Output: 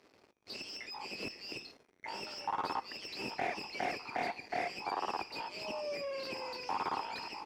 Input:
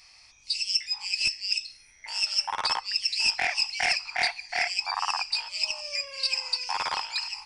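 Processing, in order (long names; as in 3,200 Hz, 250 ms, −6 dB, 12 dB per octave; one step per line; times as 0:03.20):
leveller curve on the samples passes 5
resonant band-pass 360 Hz, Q 1.5
in parallel at −2 dB: downward compressor, threshold −43 dBFS, peak gain reduction 16 dB
on the sum: level −6 dB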